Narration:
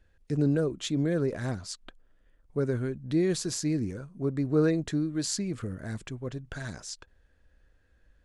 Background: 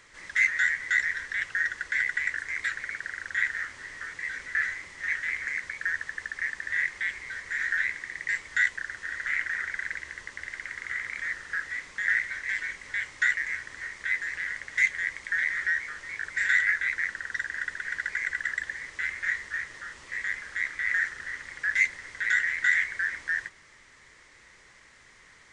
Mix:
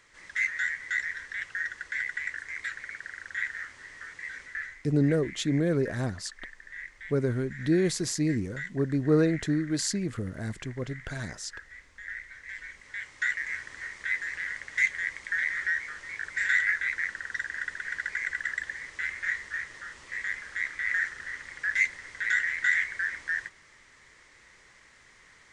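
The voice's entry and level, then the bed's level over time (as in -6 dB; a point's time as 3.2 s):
4.55 s, +1.5 dB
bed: 4.41 s -5 dB
4.84 s -14 dB
12.14 s -14 dB
13.57 s -1.5 dB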